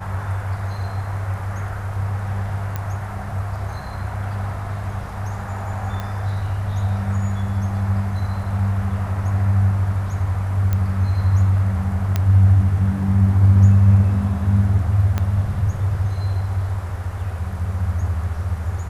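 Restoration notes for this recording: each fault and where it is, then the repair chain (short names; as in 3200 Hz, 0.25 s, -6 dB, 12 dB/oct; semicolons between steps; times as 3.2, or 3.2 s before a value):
2.76 pop -12 dBFS
6 pop -15 dBFS
10.73 pop -10 dBFS
12.16 pop -7 dBFS
15.18 pop -9 dBFS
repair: de-click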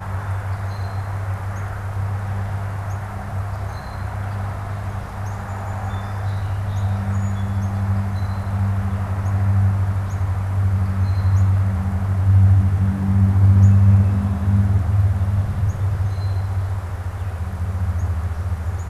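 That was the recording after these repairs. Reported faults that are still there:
15.18 pop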